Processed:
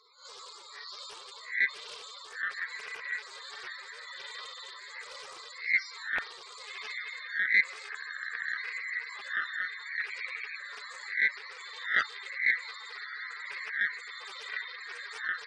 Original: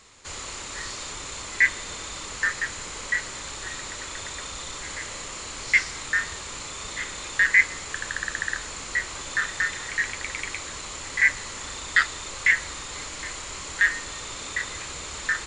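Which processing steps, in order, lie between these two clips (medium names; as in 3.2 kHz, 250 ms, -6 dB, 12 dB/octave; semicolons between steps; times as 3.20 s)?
reverse spectral sustain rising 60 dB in 0.41 s; cabinet simulation 130–5400 Hz, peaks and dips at 170 Hz -7 dB, 260 Hz -5 dB, 440 Hz +4 dB, 1.8 kHz -6 dB, 2.8 kHz -8 dB; tremolo triangle 1.2 Hz, depth 35%; tilt EQ +2 dB/octave; on a send: echo that smears into a reverb 1249 ms, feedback 55%, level -10 dB; on the sum: loudest bins only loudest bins 32; buffer glitch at 6.15 s, samples 512, times 2; loudspeaker Doppler distortion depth 0.91 ms; trim -4.5 dB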